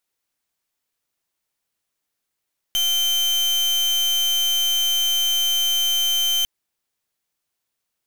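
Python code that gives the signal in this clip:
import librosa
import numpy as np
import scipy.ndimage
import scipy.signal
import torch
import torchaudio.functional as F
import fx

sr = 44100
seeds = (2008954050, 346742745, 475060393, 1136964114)

y = fx.pulse(sr, length_s=3.7, hz=3100.0, level_db=-20.0, duty_pct=37)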